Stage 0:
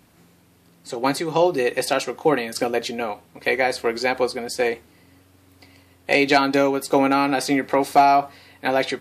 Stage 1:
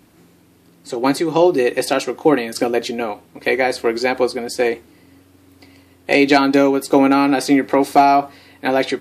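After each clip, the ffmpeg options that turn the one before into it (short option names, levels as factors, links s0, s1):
-af "equalizer=f=320:t=o:w=0.71:g=7,volume=1.26"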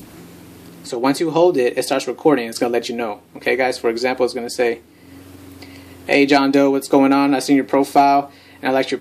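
-af "adynamicequalizer=threshold=0.0282:dfrequency=1500:dqfactor=1.1:tfrequency=1500:tqfactor=1.1:attack=5:release=100:ratio=0.375:range=2.5:mode=cutabove:tftype=bell,acompressor=mode=upward:threshold=0.0398:ratio=2.5"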